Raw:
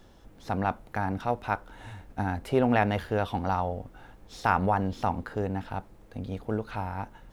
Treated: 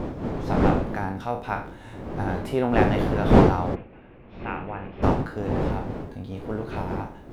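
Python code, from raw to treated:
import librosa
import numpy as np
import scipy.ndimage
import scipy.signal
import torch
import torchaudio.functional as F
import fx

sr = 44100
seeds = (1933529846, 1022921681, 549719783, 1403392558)

y = fx.spec_trails(x, sr, decay_s=0.42)
y = fx.dmg_wind(y, sr, seeds[0], corner_hz=380.0, level_db=-24.0)
y = fx.ladder_lowpass(y, sr, hz=2800.0, resonance_pct=65, at=(3.74, 5.02), fade=0.02)
y = y * 10.0 ** (-1.0 / 20.0)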